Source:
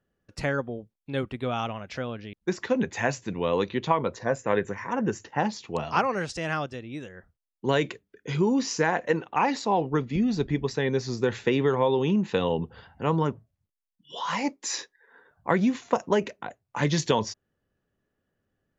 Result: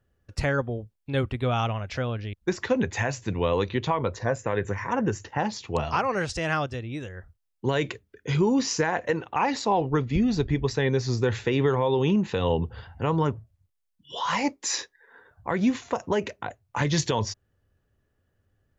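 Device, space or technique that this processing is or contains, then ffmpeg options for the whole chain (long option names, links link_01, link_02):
car stereo with a boomy subwoofer: -af "lowshelf=frequency=130:width_type=q:width=1.5:gain=8,alimiter=limit=-16dB:level=0:latency=1:release=163,volume=3dB"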